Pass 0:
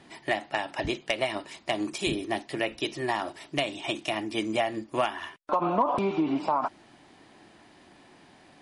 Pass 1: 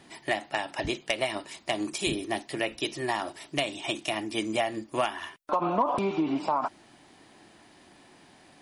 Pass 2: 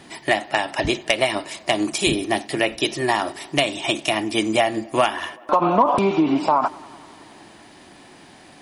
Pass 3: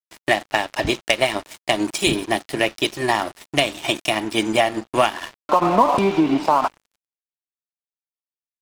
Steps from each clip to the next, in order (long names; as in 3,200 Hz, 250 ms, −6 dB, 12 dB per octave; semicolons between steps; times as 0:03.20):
high-shelf EQ 6,500 Hz +8.5 dB; level −1 dB
tape delay 93 ms, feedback 84%, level −23 dB, low-pass 3,500 Hz; level +9 dB
dead-zone distortion −32.5 dBFS; level +2 dB